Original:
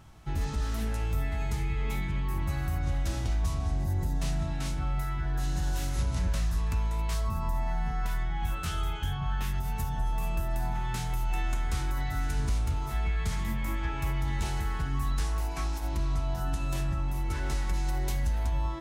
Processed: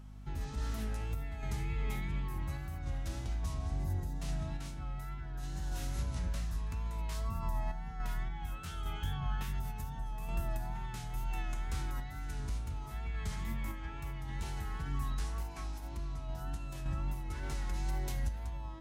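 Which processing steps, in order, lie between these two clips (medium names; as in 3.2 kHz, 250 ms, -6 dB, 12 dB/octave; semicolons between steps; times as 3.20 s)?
wow and flutter 40 cents; hum 50 Hz, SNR 14 dB; random-step tremolo 3.5 Hz; trim -5 dB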